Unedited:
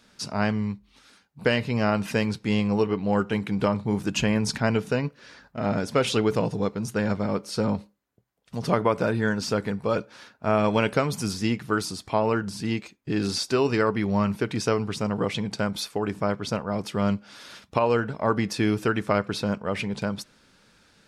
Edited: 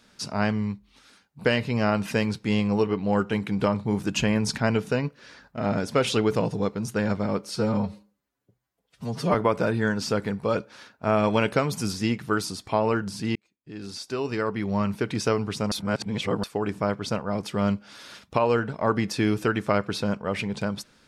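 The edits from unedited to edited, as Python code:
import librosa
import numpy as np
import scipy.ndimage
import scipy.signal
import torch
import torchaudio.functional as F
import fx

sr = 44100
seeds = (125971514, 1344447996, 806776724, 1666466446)

y = fx.edit(x, sr, fx.stretch_span(start_s=7.56, length_s=1.19, factor=1.5),
    fx.fade_in_span(start_s=12.76, length_s=1.78),
    fx.reverse_span(start_s=15.12, length_s=0.72), tone=tone)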